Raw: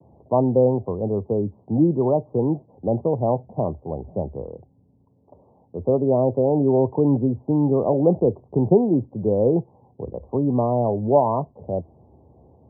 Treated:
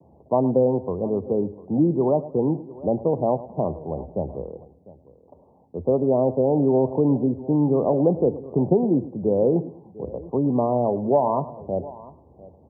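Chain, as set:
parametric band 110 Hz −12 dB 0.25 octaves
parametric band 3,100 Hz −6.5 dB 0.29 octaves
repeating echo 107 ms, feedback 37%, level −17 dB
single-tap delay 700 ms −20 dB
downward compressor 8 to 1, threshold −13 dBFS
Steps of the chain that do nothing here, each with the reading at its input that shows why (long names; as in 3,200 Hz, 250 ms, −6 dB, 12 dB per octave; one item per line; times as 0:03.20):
parametric band 3,100 Hz: nothing at its input above 1,100 Hz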